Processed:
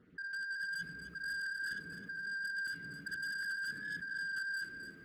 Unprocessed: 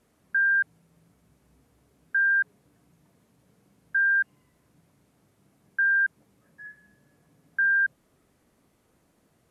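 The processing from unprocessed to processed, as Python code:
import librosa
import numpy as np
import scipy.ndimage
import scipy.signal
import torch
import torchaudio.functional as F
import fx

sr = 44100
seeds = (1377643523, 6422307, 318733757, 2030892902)

y = fx.spec_dropout(x, sr, seeds[0], share_pct=36)
y = fx.env_lowpass(y, sr, base_hz=1600.0, full_db=-23.0)
y = fx.stretch_vocoder(y, sr, factor=0.53)
y = fx.low_shelf(y, sr, hz=80.0, db=-8.5)
y = fx.room_early_taps(y, sr, ms=(56, 67), db=(-10.0, -5.5))
y = fx.rev_gated(y, sr, seeds[1], gate_ms=450, shape='rising', drr_db=-5.0)
y = fx.over_compress(y, sr, threshold_db=-35.0, ratio=-1.0)
y = fx.band_shelf(y, sr, hz=770.0, db=-14.0, octaves=1.2)
y = 10.0 ** (-38.5 / 20.0) * np.tanh(y / 10.0 ** (-38.5 / 20.0))
y = fx.echo_crushed(y, sr, ms=261, feedback_pct=35, bits=12, wet_db=-9)
y = y * 10.0 ** (1.0 / 20.0)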